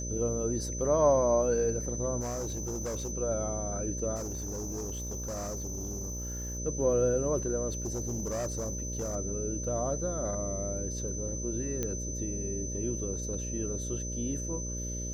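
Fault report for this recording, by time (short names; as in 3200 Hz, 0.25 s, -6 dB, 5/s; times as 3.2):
buzz 60 Hz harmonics 10 -37 dBFS
tone 6100 Hz -38 dBFS
2.2–3.13 clipped -31 dBFS
4.15–6.59 clipped -33 dBFS
7.69–9.16 clipped -29.5 dBFS
11.83 pop -18 dBFS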